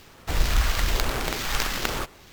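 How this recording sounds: phasing stages 2, 1.1 Hz, lowest notch 330–3300 Hz; aliases and images of a low sample rate 10 kHz, jitter 20%; SBC

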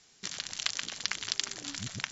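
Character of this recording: noise floor -62 dBFS; spectral tilt -0.5 dB/octave

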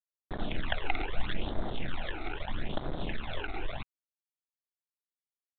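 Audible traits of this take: a quantiser's noise floor 6-bit, dither none; phasing stages 12, 0.78 Hz, lowest notch 170–2700 Hz; µ-law

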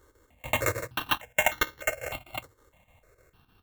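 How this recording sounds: a buzz of ramps at a fixed pitch in blocks of 16 samples; chopped level 6.6 Hz, depth 60%, duty 75%; aliases and images of a low sample rate 4.9 kHz, jitter 0%; notches that jump at a steady rate 3.3 Hz 690–2500 Hz

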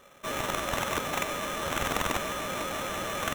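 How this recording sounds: aliases and images of a low sample rate 4.7 kHz, jitter 0%

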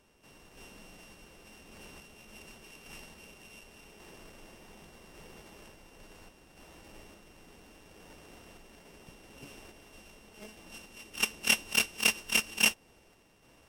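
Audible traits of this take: a buzz of ramps at a fixed pitch in blocks of 16 samples; random-step tremolo; aliases and images of a low sample rate 14 kHz, jitter 0%; Vorbis

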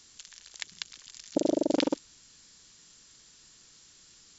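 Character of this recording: noise floor -58 dBFS; spectral tilt -3.5 dB/octave

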